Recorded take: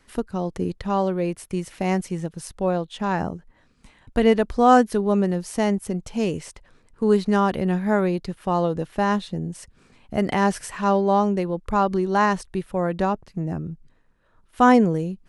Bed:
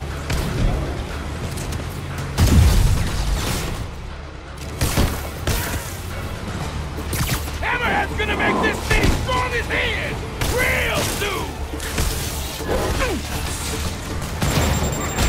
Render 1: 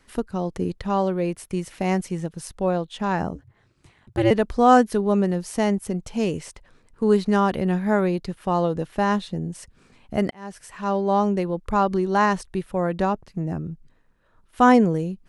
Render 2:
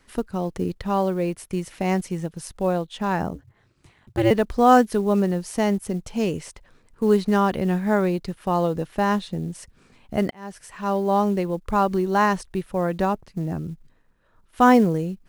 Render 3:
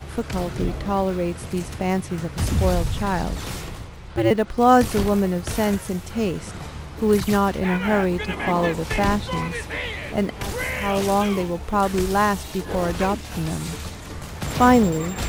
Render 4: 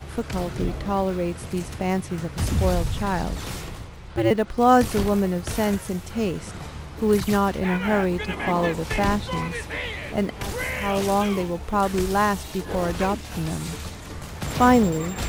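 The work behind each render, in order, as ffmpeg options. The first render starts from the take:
-filter_complex "[0:a]asettb=1/sr,asplit=3[s0][s1][s2];[s0]atrim=end=3.354[s3];[s1]atrim=start=3.35:end=4.31,asetpts=PTS-STARTPTS,afade=t=in:d=0.004:c=qsin,afade=t=out:st=0.956:d=0.004:c=qsin,aeval=exprs='val(0)*sin(2*PI*110*n/s)':c=same[s4];[s2]atrim=start=4.306[s5];[s3][s4]acrossfade=d=0.004:c1=hsin:c2=qsin[s6];[s6][s5]acrossfade=d=0.004:c1=qsin:c2=hsin,asplit=2[s7][s8];[s7]atrim=end=10.31,asetpts=PTS-STARTPTS,afade=t=out:st=10.306:d=0.004:c=hsin[s9];[s8]atrim=start=10.31,asetpts=PTS-STARTPTS,afade=t=in:d=0.97[s10];[s9][s10]concat=n=2:v=0:a=1"
-af "acrusher=bits=8:mode=log:mix=0:aa=0.000001"
-filter_complex "[1:a]volume=0.398[s0];[0:a][s0]amix=inputs=2:normalize=0"
-af "volume=0.841"

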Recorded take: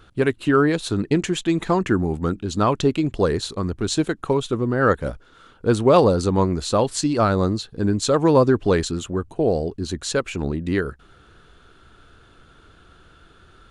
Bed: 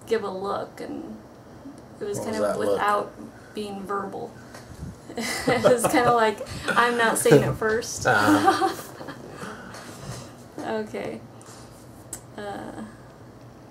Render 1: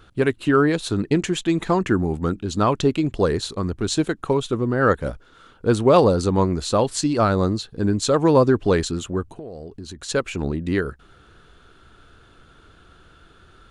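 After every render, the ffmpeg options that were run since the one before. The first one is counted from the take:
-filter_complex "[0:a]asplit=3[s0][s1][s2];[s0]afade=t=out:st=9.31:d=0.02[s3];[s1]acompressor=threshold=0.0251:ratio=10:attack=3.2:release=140:knee=1:detection=peak,afade=t=in:st=9.31:d=0.02,afade=t=out:st=10.08:d=0.02[s4];[s2]afade=t=in:st=10.08:d=0.02[s5];[s3][s4][s5]amix=inputs=3:normalize=0"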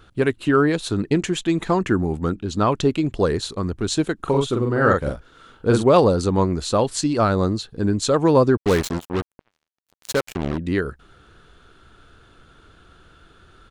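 -filter_complex "[0:a]asettb=1/sr,asplit=3[s0][s1][s2];[s0]atrim=end=2.304[s3];[s1]atrim=start=2.3:end=2.72,asetpts=PTS-STARTPTS,afade=t=in:d=0.004:c=qsin,afade=t=out:st=0.416:d=0.004:c=qsin,highshelf=f=9600:g=-9[s4];[s2]atrim=start=2.716[s5];[s3][s4]acrossfade=d=0.004:c1=hsin:c2=qsin[s6];[s6][s5]acrossfade=d=0.004:c1=qsin:c2=hsin,asplit=3[s7][s8][s9];[s7]afade=t=out:st=4.19:d=0.02[s10];[s8]asplit=2[s11][s12];[s12]adelay=43,volume=0.708[s13];[s11][s13]amix=inputs=2:normalize=0,afade=t=in:st=4.19:d=0.02,afade=t=out:st=5.82:d=0.02[s14];[s9]afade=t=in:st=5.82:d=0.02[s15];[s10][s14][s15]amix=inputs=3:normalize=0,asettb=1/sr,asplit=3[s16][s17][s18];[s16]atrim=end=8.574[s19];[s17]atrim=start=8.57:end=10.58,asetpts=PTS-STARTPTS,afade=t=in:d=0.004:c=qsin,afade=t=out:st=2.006:d=0.004:c=qsin,acrusher=bits=3:mix=0:aa=0.5[s20];[s18]atrim=start=10.576[s21];[s19][s20]acrossfade=d=0.004:c1=hsin:c2=qsin[s22];[s22][s21]acrossfade=d=0.004:c1=qsin:c2=hsin"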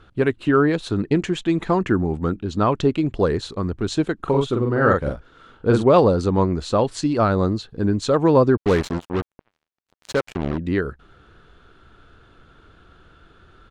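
-af "aemphasis=mode=reproduction:type=50fm"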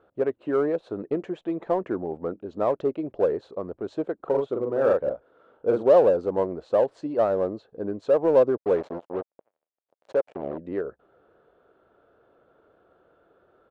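-filter_complex "[0:a]bandpass=f=570:t=q:w=2.8:csg=0,asplit=2[s0][s1];[s1]asoftclip=type=hard:threshold=0.0631,volume=0.335[s2];[s0][s2]amix=inputs=2:normalize=0"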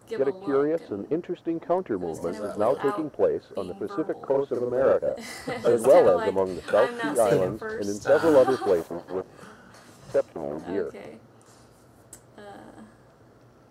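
-filter_complex "[1:a]volume=0.316[s0];[0:a][s0]amix=inputs=2:normalize=0"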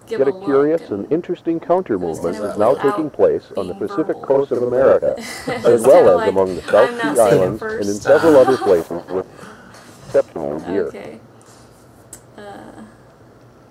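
-af "volume=2.82,alimiter=limit=0.891:level=0:latency=1"

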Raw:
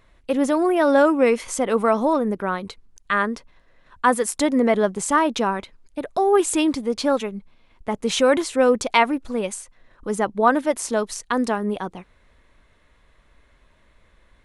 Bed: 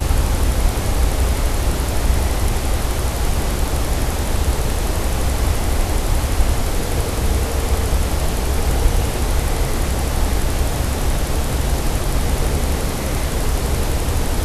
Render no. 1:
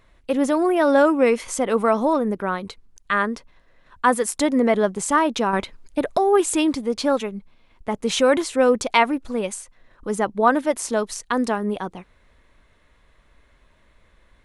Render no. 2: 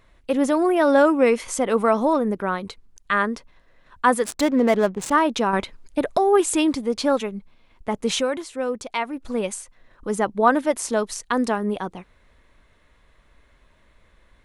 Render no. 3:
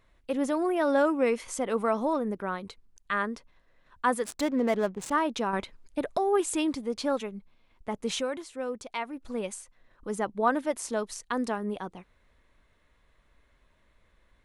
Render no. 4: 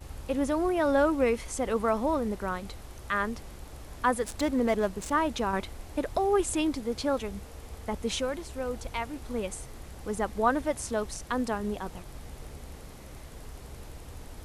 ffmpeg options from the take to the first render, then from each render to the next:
-filter_complex "[0:a]asettb=1/sr,asplit=3[s0][s1][s2];[s0]atrim=end=5.534[s3];[s1]atrim=start=5.53:end=6.18,asetpts=PTS-STARTPTS,afade=t=in:d=0.004:c=qsin,afade=t=out:st=0.646:d=0.004:c=qsin,acontrast=70[s4];[s2]atrim=start=6.176[s5];[s3][s4]acrossfade=d=0.004:c1=hsin:c2=qsin[s6];[s6][s5]acrossfade=d=0.004:c1=qsin:c2=hsin"
-filter_complex "[0:a]asettb=1/sr,asplit=3[s0][s1][s2];[s0]atrim=end=4.244[s3];[s1]atrim=start=4.24:end=5.12,asetpts=PTS-STARTPTS,afade=t=in:d=0.004:c=qsin,afade=t=out:st=0.876:d=0.004:c=qsin,adynamicsmooth=sensitivity=7.5:basefreq=640[s4];[s2]atrim=start=5.116[s5];[s3][s4]acrossfade=d=0.004:c1=hsin:c2=qsin[s6];[s6][s5]acrossfade=d=0.004:c1=qsin:c2=hsin,asplit=3[s7][s8][s9];[s7]atrim=end=8.34,asetpts=PTS-STARTPTS,afade=t=out:st=8.15:d=0.19:c=qua:silence=0.354813[s10];[s8]atrim=start=8.34:end=9.07,asetpts=PTS-STARTPTS,volume=0.355[s11];[s9]atrim=start=9.07,asetpts=PTS-STARTPTS,afade=t=in:d=0.19:c=qua:silence=0.354813[s12];[s10][s11][s12]concat=n=3:v=0:a=1"
-af "volume=0.398"
-filter_complex "[1:a]volume=0.0562[s0];[0:a][s0]amix=inputs=2:normalize=0"

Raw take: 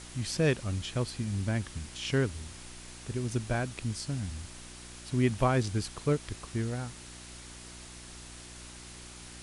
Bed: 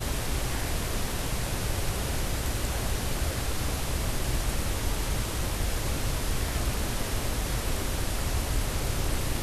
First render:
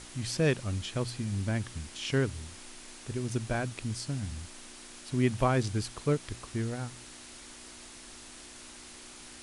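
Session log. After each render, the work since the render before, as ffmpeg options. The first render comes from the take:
-af "bandreject=f=60:t=h:w=4,bandreject=f=120:t=h:w=4,bandreject=f=180:t=h:w=4"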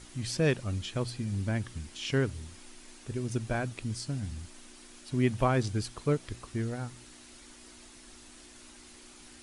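-af "afftdn=nr=6:nf=-49"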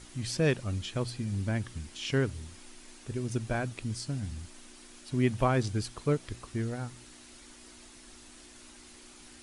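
-af anull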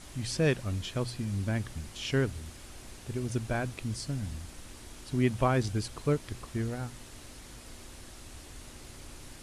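-filter_complex "[1:a]volume=0.0944[s0];[0:a][s0]amix=inputs=2:normalize=0"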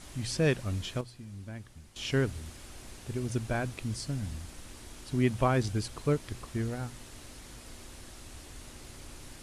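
-filter_complex "[0:a]asplit=3[s0][s1][s2];[s0]atrim=end=1.01,asetpts=PTS-STARTPTS,afade=t=out:st=0.87:d=0.14:c=log:silence=0.266073[s3];[s1]atrim=start=1.01:end=1.96,asetpts=PTS-STARTPTS,volume=0.266[s4];[s2]atrim=start=1.96,asetpts=PTS-STARTPTS,afade=t=in:d=0.14:c=log:silence=0.266073[s5];[s3][s4][s5]concat=n=3:v=0:a=1"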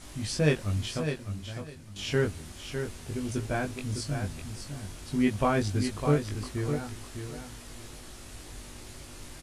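-filter_complex "[0:a]asplit=2[s0][s1];[s1]adelay=20,volume=0.708[s2];[s0][s2]amix=inputs=2:normalize=0,aecho=1:1:605|1210|1815:0.422|0.0801|0.0152"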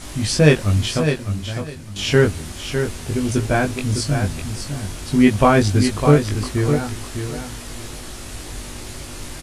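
-af "volume=3.98,alimiter=limit=0.891:level=0:latency=1"

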